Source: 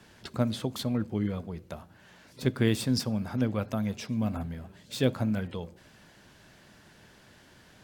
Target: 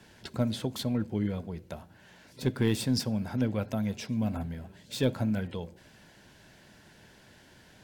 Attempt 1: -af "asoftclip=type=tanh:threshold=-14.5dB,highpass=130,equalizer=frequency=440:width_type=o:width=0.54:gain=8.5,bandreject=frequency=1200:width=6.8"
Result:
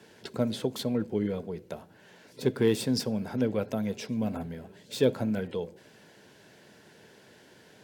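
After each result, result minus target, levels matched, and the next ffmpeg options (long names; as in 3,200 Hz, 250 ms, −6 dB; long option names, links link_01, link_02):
500 Hz band +5.0 dB; 125 Hz band −4.5 dB
-af "asoftclip=type=tanh:threshold=-14.5dB,highpass=130,bandreject=frequency=1200:width=6.8"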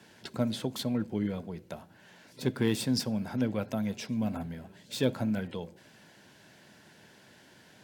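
125 Hz band −2.5 dB
-af "asoftclip=type=tanh:threshold=-14.5dB,bandreject=frequency=1200:width=6.8"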